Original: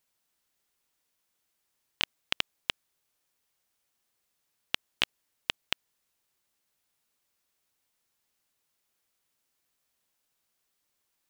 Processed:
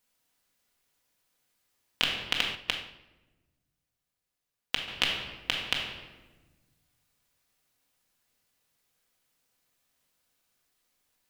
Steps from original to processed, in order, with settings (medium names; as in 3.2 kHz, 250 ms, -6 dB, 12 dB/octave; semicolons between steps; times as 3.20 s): simulated room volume 790 m³, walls mixed, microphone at 1.9 m; 2.55–4.88 s: upward expansion 1.5:1, over -47 dBFS